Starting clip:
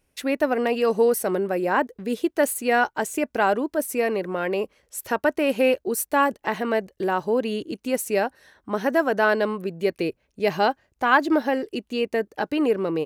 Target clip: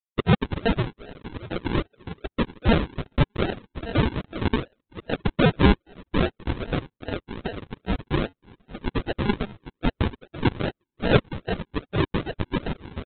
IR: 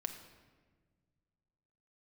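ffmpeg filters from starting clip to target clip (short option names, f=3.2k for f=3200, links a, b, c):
-filter_complex "[0:a]aecho=1:1:1145|2290|3435:0.211|0.0761|0.0274,asplit=2[a][b];[b]acompressor=threshold=-30dB:ratio=10,volume=0.5dB[c];[a][c]amix=inputs=2:normalize=0,acrusher=bits=7:mix=0:aa=0.000001,afreqshift=-54,anlmdn=251,highpass=f=2.2k:t=q:w=8,aresample=8000,acrusher=samples=10:mix=1:aa=0.000001:lfo=1:lforange=6:lforate=2.5,aresample=44100"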